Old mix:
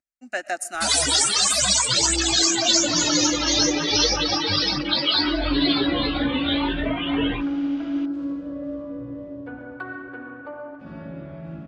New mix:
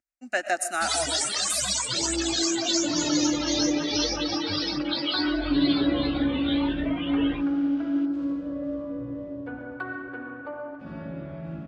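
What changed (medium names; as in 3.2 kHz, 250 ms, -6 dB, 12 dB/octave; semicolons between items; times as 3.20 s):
speech: send +10.5 dB; first sound -7.5 dB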